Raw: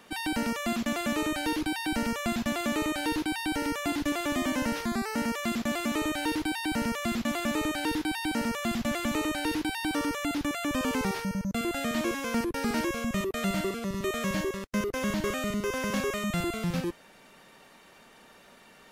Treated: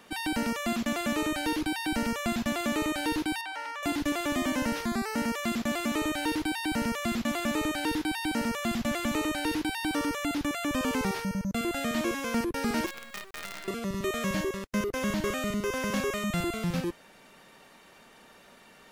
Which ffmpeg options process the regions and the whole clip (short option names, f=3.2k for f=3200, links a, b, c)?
-filter_complex "[0:a]asettb=1/sr,asplit=3[a][b][c];[a]atrim=end=3.414[d];[b]atrim=start=3.41:end=3.83,asetpts=PTS-STARTPTS,afade=t=in:d=0.004:c=qsin,afade=t=out:st=0.416:d=0.004:c=qsin,highpass=f=780:w=0.5412,highpass=f=780:w=1.3066,aemphasis=mode=reproduction:type=riaa[e];[c]atrim=start=3.826[f];[d][e]acrossfade=d=0.004:c1=hsin:c2=qsin[g];[g][f]acrossfade=d=0.004:c1=qsin:c2=hsin,asettb=1/sr,asplit=3[h][i][j];[h]atrim=end=12.864[k];[i]atrim=start=12.86:end=13.68,asetpts=PTS-STARTPTS,afade=t=in:d=0.004:c=qsin,afade=t=out:st=0.816:d=0.004:c=qsin,bandpass=f=1.8k:t=q:w=1.5,acrusher=bits=6:dc=4:mix=0:aa=0.000001[l];[j]atrim=start=13.676[m];[k][l]acrossfade=d=0.004:c1=hsin:c2=qsin[n];[n][m]acrossfade=d=0.004:c1=qsin:c2=hsin"